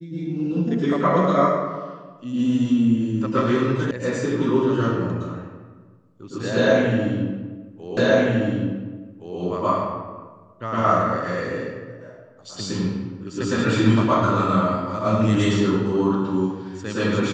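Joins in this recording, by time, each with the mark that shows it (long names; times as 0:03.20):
0:03.91: cut off before it has died away
0:07.97: the same again, the last 1.42 s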